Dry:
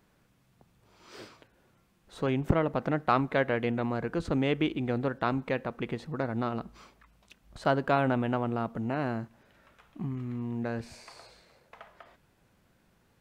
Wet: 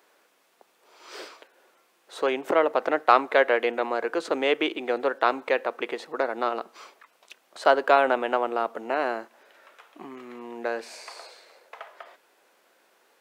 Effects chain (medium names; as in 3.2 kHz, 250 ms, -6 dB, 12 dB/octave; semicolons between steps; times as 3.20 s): high-pass 390 Hz 24 dB/octave; trim +8 dB